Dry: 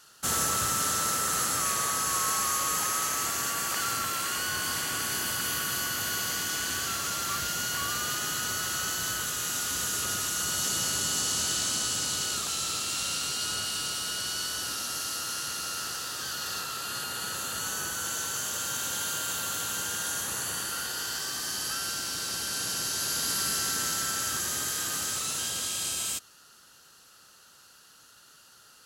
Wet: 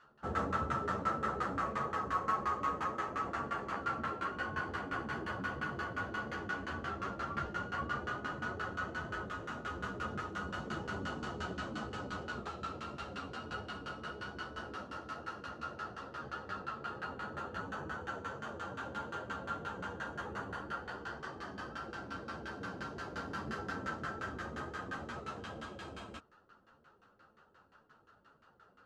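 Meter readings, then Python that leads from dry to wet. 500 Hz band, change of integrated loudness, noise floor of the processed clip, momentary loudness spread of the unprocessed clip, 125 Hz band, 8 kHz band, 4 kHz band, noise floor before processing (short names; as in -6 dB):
-0.5 dB, -11.5 dB, -66 dBFS, 5 LU, -1.5 dB, -35.0 dB, -21.5 dB, -56 dBFS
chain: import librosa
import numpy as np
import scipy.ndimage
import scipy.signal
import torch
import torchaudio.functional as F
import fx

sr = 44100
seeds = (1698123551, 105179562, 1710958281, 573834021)

y = fx.filter_lfo_lowpass(x, sr, shape='saw_down', hz=5.7, low_hz=390.0, high_hz=1700.0, q=1.1)
y = fx.ensemble(y, sr)
y = y * 10.0 ** (2.0 / 20.0)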